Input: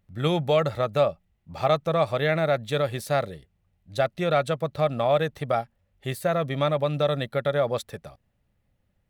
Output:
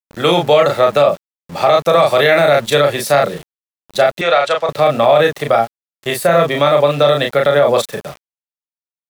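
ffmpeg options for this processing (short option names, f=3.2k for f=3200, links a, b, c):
-filter_complex "[0:a]asettb=1/sr,asplit=3[a][b][c];[a]atrim=end=1.824[d];[b]atrim=start=1.82:end=2.7,asetpts=PTS-STARTPTS,afade=t=in:d=0.004:c=qsin,afade=t=out:st=0.876:d=0.004:c=qsin,highshelf=f=5.7k:g=8[e];[c]atrim=start=2.696[f];[d][e]acrossfade=d=0.004:c1=hsin:c2=qsin[g];[g][f]acrossfade=d=0.004:c1=qsin:c2=hsin,acrossover=split=300|1300|1700[h][i][j][k];[h]asoftclip=type=tanh:threshold=-37dB[l];[l][i][j][k]amix=inputs=4:normalize=0,highpass=f=140:w=0.5412,highpass=f=140:w=1.3066,asplit=2[m][n];[n]adelay=35,volume=-3.5dB[o];[m][o]amix=inputs=2:normalize=0,aeval=exprs='val(0)*gte(abs(val(0)),0.00562)':c=same,asettb=1/sr,asplit=3[p][q][r];[p]atrim=end=4.214[s];[q]atrim=start=4.21:end=4.69,asetpts=PTS-STARTPTS,afade=t=in:d=0.004:c=qsin,afade=t=out:st=0.476:d=0.004:c=qsin,acrossover=split=510 7200:gain=0.158 1 0.1[t][u][v];[t][u][v]amix=inputs=3:normalize=0[w];[r]atrim=start=4.686[x];[s][w]acrossfade=d=0.004:c1=hsin:c2=qsin[y];[y][x]acrossfade=d=0.004:c1=qsin:c2=hsin,alimiter=level_in=15dB:limit=-1dB:release=50:level=0:latency=1,volume=-1dB"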